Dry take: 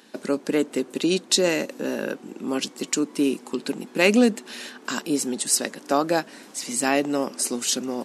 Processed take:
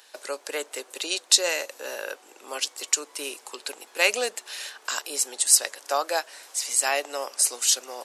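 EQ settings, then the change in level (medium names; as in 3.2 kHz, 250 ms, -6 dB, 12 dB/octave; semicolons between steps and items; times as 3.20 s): high-pass 540 Hz 24 dB/octave; treble shelf 3.9 kHz +7.5 dB; -2.0 dB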